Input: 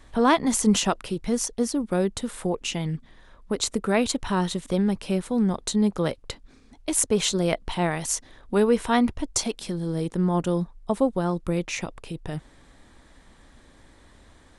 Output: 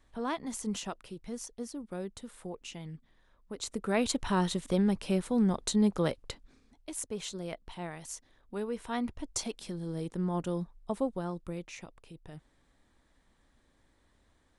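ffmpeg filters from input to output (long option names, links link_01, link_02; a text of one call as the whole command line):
ffmpeg -i in.wav -af "volume=2.5dB,afade=type=in:start_time=3.54:duration=0.66:silence=0.281838,afade=type=out:start_time=6.04:duration=0.89:silence=0.266073,afade=type=in:start_time=8.74:duration=0.69:silence=0.473151,afade=type=out:start_time=10.98:duration=0.76:silence=0.473151" out.wav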